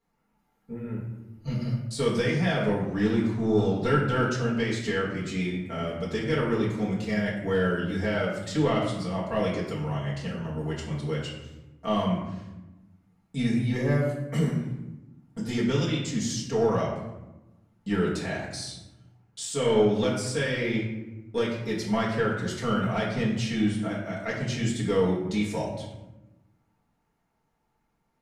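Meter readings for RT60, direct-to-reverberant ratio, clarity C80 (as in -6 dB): 1.0 s, -8.0 dB, 5.5 dB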